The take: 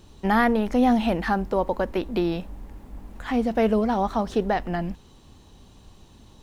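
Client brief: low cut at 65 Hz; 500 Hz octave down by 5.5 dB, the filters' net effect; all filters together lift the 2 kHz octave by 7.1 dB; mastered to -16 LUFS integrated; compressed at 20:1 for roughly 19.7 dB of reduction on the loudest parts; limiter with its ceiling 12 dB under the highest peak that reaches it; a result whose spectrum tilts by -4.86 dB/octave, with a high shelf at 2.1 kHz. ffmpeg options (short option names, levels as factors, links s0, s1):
-af "highpass=65,equalizer=f=500:t=o:g=-8,equalizer=f=2000:t=o:g=5,highshelf=f=2100:g=7.5,acompressor=threshold=0.0224:ratio=20,volume=20,alimiter=limit=0.531:level=0:latency=1"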